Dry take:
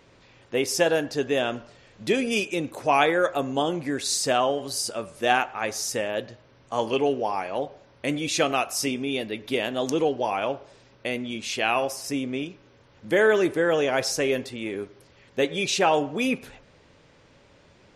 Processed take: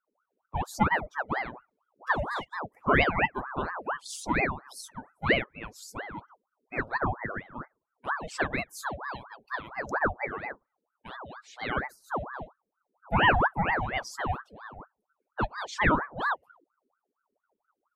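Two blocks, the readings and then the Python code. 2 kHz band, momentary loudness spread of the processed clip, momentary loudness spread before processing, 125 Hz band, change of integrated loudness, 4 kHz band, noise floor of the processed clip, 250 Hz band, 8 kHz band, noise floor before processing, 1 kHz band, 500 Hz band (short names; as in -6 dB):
-0.5 dB, 17 LU, 11 LU, +2.0 dB, -4.5 dB, -10.5 dB, -85 dBFS, -7.5 dB, -15.5 dB, -57 dBFS, -2.0 dB, -11.0 dB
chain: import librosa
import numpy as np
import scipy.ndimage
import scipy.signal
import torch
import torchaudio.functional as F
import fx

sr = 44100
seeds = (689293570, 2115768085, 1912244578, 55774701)

y = fx.bin_expand(x, sr, power=2.0)
y = fx.high_shelf_res(y, sr, hz=1800.0, db=-9.5, q=1.5)
y = fx.ring_lfo(y, sr, carrier_hz=880.0, swing_pct=65, hz=4.3)
y = y * 10.0 ** (2.5 / 20.0)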